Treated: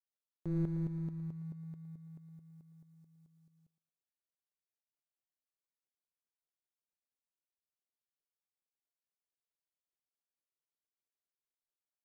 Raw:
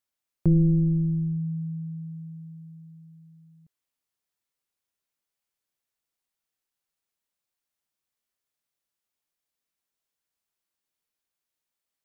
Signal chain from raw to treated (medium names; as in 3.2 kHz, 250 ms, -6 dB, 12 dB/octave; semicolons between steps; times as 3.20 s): median filter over 41 samples; tremolo saw up 4.6 Hz, depth 70%; tone controls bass -9 dB, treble +7 dB; on a send: thinning echo 113 ms, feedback 55%, high-pass 410 Hz, level -10.5 dB; on the sum: trim -4.5 dB